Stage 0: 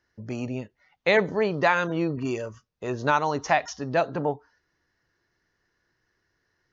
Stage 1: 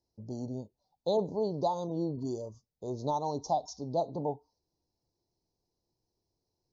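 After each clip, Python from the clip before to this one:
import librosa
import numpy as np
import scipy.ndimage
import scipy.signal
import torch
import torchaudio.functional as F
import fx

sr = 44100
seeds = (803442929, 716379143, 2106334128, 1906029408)

y = scipy.signal.sosfilt(scipy.signal.ellip(3, 1.0, 50, [880.0, 4100.0], 'bandstop', fs=sr, output='sos'), x)
y = fx.peak_eq(y, sr, hz=2700.0, db=-9.5, octaves=0.21)
y = y * librosa.db_to_amplitude(-6.0)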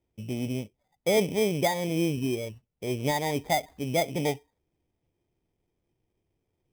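y = fx.env_lowpass_down(x, sr, base_hz=1600.0, full_db=-28.5)
y = fx.tilt_shelf(y, sr, db=7.5, hz=1300.0)
y = fx.sample_hold(y, sr, seeds[0], rate_hz=2800.0, jitter_pct=0)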